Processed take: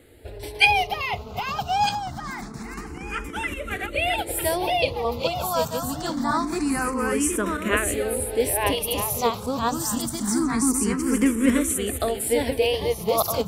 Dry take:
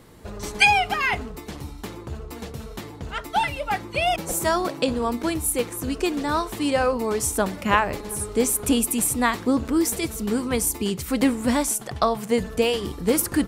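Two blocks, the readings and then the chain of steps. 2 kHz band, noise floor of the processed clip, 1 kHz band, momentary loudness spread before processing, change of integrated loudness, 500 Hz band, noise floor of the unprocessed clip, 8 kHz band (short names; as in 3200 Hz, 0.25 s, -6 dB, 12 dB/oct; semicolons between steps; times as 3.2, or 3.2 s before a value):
-0.5 dB, -37 dBFS, -0.5 dB, 15 LU, -0.5 dB, 0.0 dB, -39 dBFS, -1.0 dB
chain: regenerating reverse delay 0.631 s, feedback 41%, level -1 dB; endless phaser +0.25 Hz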